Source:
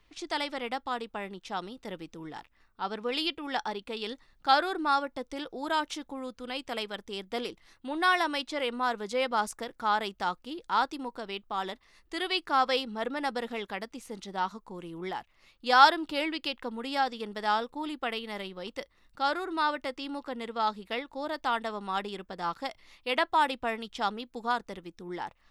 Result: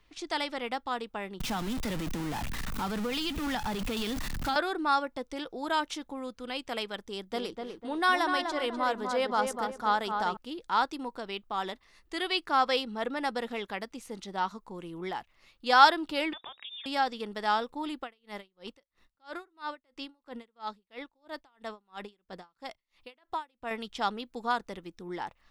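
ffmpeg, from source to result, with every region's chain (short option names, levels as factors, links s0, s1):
-filter_complex "[0:a]asettb=1/sr,asplit=3[s0][s1][s2];[s0]atrim=end=1.404[s3];[s1]atrim=start=1.4:end=4.56,asetpts=PTS-STARTPTS,afade=t=in:d=0.004:c=qsin,afade=t=out:st=3.156:d=0.004:c=qsin,aeval=exprs='val(0)+0.5*0.0282*sgn(val(0))':c=same,lowshelf=f=280:t=q:w=1.5:g=9.5,acrossover=split=81|280[s4][s5][s6];[s4]acompressor=threshold=0.02:ratio=4[s7];[s5]acompressor=threshold=0.00794:ratio=4[s8];[s6]acompressor=threshold=0.0316:ratio=4[s9];[s7][s8][s9]amix=inputs=3:normalize=0[s10];[s2]atrim=start=4.556[s11];[s3][s10]acrossfade=d=0.004:c1=hsin:c2=qsin[s12];[s12][s11]acrossfade=d=0.004:c1=qsin:c2=hsin,asettb=1/sr,asplit=3[s13][s14][s15];[s13]atrim=end=7.064[s16];[s14]atrim=start=7.06:end=10.37,asetpts=PTS-STARTPTS,afade=t=in:d=0.004:c=qsin,afade=t=out:st=3.306:d=0.004:c=qsin,equalizer=f=2400:t=o:w=0.65:g=-4.5,asplit=2[s17][s18];[s18]adelay=249,lowpass=f=1800:p=1,volume=0.596,asplit=2[s19][s20];[s20]adelay=249,lowpass=f=1800:p=1,volume=0.39,asplit=2[s21][s22];[s22]adelay=249,lowpass=f=1800:p=1,volume=0.39,asplit=2[s23][s24];[s24]adelay=249,lowpass=f=1800:p=1,volume=0.39,asplit=2[s25][s26];[s26]adelay=249,lowpass=f=1800:p=1,volume=0.39[s27];[s17][s19][s21][s23][s25][s27]amix=inputs=6:normalize=0,atrim=end_sample=145971[s28];[s15]atrim=start=10.366[s29];[s16][s28]acrossfade=d=0.004:c1=hsin:c2=qsin[s30];[s30][s29]acrossfade=d=0.004:c1=qsin:c2=hsin,asettb=1/sr,asplit=3[s31][s32][s33];[s31]atrim=end=16.334[s34];[s32]atrim=start=16.33:end=16.86,asetpts=PTS-STARTPTS,afade=t=in:d=0.004:c=qsin,afade=t=out:st=0.526:d=0.004:c=qsin,acompressor=threshold=0.00891:ratio=3:attack=3.2:release=140:knee=1:detection=peak,lowpass=f=3200:t=q:w=0.5098,lowpass=f=3200:t=q:w=0.6013,lowpass=f=3200:t=q:w=0.9,lowpass=f=3200:t=q:w=2.563,afreqshift=-3800[s35];[s33]atrim=start=16.856[s36];[s34][s35]acrossfade=d=0.004:c1=hsin:c2=qsin[s37];[s37][s36]acrossfade=d=0.004:c1=qsin:c2=hsin,asettb=1/sr,asplit=3[s38][s39][s40];[s38]atrim=end=18.024[s41];[s39]atrim=start=18.02:end=23.71,asetpts=PTS-STARTPTS,afade=t=in:d=0.004:c=qsin,afade=t=out:st=5.686:d=0.004:c=qsin,acompressor=threshold=0.0224:ratio=2:attack=3.2:release=140:knee=1:detection=peak,aeval=exprs='val(0)*pow(10,-36*(0.5-0.5*cos(2*PI*3*n/s))/20)':c=same[s42];[s40]atrim=start=23.706[s43];[s41][s42]acrossfade=d=0.004:c1=hsin:c2=qsin[s44];[s44][s43]acrossfade=d=0.004:c1=qsin:c2=hsin"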